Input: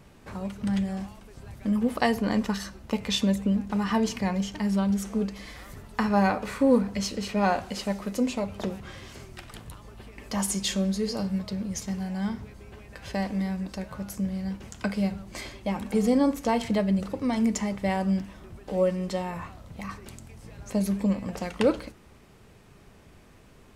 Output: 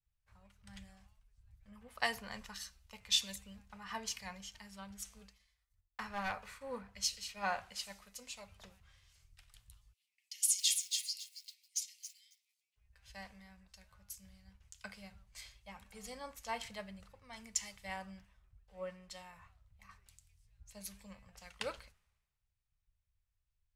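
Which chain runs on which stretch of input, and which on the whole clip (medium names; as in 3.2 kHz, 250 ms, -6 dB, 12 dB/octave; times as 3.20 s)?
5.16–6.62 s: hard clipper -19 dBFS + expander -36 dBFS
9.93–12.76 s: steep high-pass 2 kHz 72 dB/octave + bit-crushed delay 275 ms, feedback 35%, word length 8-bit, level -5 dB
whole clip: amplifier tone stack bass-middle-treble 10-0-10; three bands expanded up and down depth 100%; trim -8.5 dB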